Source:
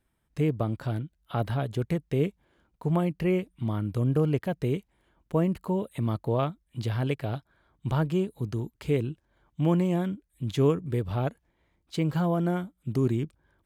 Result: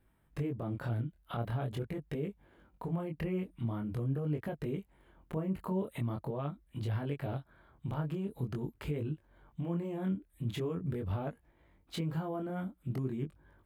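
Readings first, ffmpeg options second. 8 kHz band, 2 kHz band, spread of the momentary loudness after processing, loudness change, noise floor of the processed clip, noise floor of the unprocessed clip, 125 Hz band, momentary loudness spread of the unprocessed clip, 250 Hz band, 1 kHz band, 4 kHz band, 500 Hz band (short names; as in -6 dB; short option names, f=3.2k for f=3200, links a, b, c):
n/a, -8.0 dB, 6 LU, -8.5 dB, -70 dBFS, -74 dBFS, -8.0 dB, 9 LU, -8.5 dB, -9.0 dB, -7.5 dB, -10.5 dB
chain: -af "equalizer=f=5.9k:t=o:w=1.7:g=-10.5,acompressor=threshold=-31dB:ratio=2.5,alimiter=level_in=8.5dB:limit=-24dB:level=0:latency=1:release=146,volume=-8.5dB,flanger=delay=19.5:depth=7:speed=0.44,volume=7.5dB"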